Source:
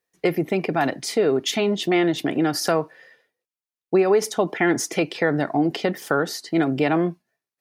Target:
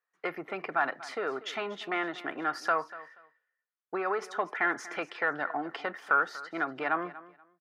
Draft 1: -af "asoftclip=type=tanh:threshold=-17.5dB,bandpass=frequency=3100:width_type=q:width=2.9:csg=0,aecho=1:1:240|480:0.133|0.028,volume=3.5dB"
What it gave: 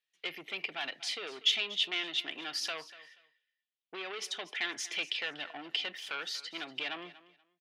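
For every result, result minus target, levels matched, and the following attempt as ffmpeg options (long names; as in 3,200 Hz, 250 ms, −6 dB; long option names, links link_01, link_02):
4,000 Hz band +16.0 dB; soft clipping: distortion +12 dB
-af "asoftclip=type=tanh:threshold=-17.5dB,bandpass=frequency=1300:width_type=q:width=2.9:csg=0,aecho=1:1:240|480:0.133|0.028,volume=3.5dB"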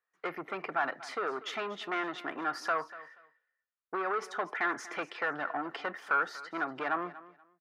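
soft clipping: distortion +12 dB
-af "asoftclip=type=tanh:threshold=-8.5dB,bandpass=frequency=1300:width_type=q:width=2.9:csg=0,aecho=1:1:240|480:0.133|0.028,volume=3.5dB"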